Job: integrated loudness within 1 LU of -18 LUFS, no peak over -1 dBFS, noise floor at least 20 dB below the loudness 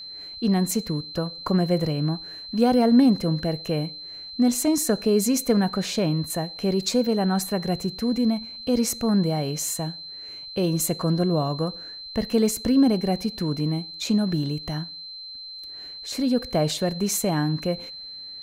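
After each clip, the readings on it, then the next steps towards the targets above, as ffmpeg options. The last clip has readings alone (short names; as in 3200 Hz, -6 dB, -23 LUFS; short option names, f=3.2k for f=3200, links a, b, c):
steady tone 4100 Hz; tone level -36 dBFS; loudness -24.0 LUFS; peak -8.0 dBFS; loudness target -18.0 LUFS
-> -af "bandreject=f=4.1k:w=30"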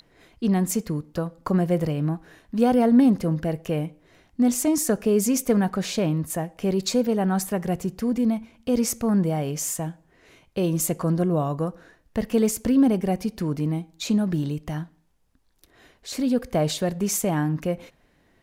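steady tone none; loudness -24.0 LUFS; peak -8.0 dBFS; loudness target -18.0 LUFS
-> -af "volume=6dB"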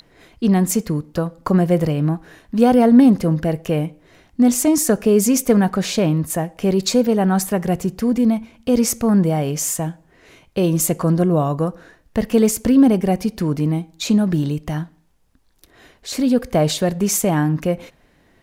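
loudness -18.0 LUFS; peak -2.0 dBFS; noise floor -57 dBFS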